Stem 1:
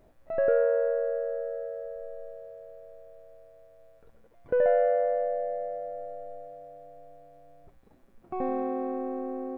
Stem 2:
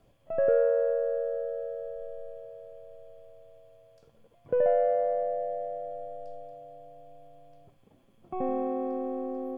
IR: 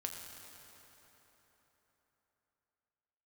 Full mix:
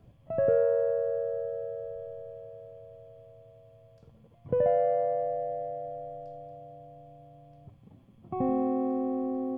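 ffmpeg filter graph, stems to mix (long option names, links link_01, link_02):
-filter_complex "[0:a]bandreject=frequency=2000:width=6.4,volume=-14.5dB[link_01];[1:a]highpass=58,bass=frequency=250:gain=14,treble=frequency=4000:gain=-6,volume=-0.5dB[link_02];[link_01][link_02]amix=inputs=2:normalize=0,bandreject=frequency=49.49:width_type=h:width=4,bandreject=frequency=98.98:width_type=h:width=4,bandreject=frequency=148.47:width_type=h:width=4"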